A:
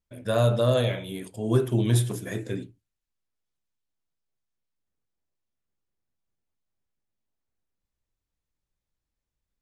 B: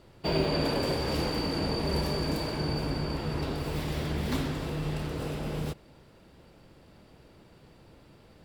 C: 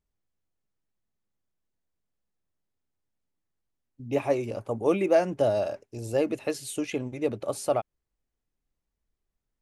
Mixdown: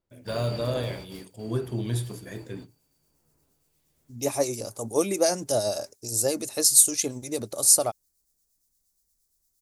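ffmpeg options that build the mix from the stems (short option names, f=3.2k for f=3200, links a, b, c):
-filter_complex "[0:a]volume=-6.5dB,asplit=2[a][b];[1:a]highshelf=f=6.7k:g=11.5,acrossover=split=2100[c][d];[c]aeval=exprs='val(0)*(1-0.5/2+0.5/2*cos(2*PI*1.2*n/s))':c=same[e];[d]aeval=exprs='val(0)*(1-0.5/2-0.5/2*cos(2*PI*1.2*n/s))':c=same[f];[e][f]amix=inputs=2:normalize=0,volume=-9dB,afade=t=out:st=0.81:d=0.51:silence=0.298538[g];[2:a]aexciter=amount=10.9:drive=6:freq=4.2k,acrossover=split=2000[h][i];[h]aeval=exprs='val(0)*(1-0.5/2+0.5/2*cos(2*PI*8.6*n/s))':c=same[j];[i]aeval=exprs='val(0)*(1-0.5/2-0.5/2*cos(2*PI*8.6*n/s))':c=same[k];[j][k]amix=inputs=2:normalize=0,adelay=100,volume=0.5dB[l];[b]apad=whole_len=372366[m];[g][m]sidechaingate=range=-20dB:threshold=-41dB:ratio=16:detection=peak[n];[a][n][l]amix=inputs=3:normalize=0"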